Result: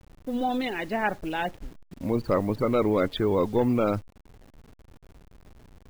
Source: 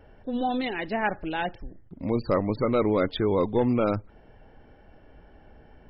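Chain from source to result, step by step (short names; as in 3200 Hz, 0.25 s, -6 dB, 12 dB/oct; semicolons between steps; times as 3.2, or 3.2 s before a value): level-crossing sampler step -46 dBFS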